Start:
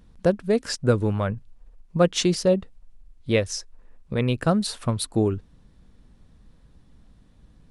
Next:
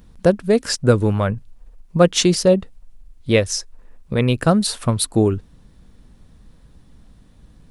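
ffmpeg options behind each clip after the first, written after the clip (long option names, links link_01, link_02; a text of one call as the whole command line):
ffmpeg -i in.wav -af "highshelf=frequency=9800:gain=8,volume=5.5dB" out.wav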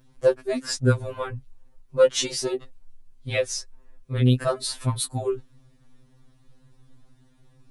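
ffmpeg -i in.wav -af "afftfilt=real='re*2.45*eq(mod(b,6),0)':imag='im*2.45*eq(mod(b,6),0)':win_size=2048:overlap=0.75,volume=-4dB" out.wav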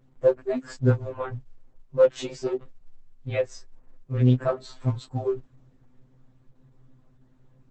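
ffmpeg -i in.wav -af "equalizer=frequency=5200:width_type=o:width=2.1:gain=-15" -ar 48000 -c:a libopus -b:a 10k out.opus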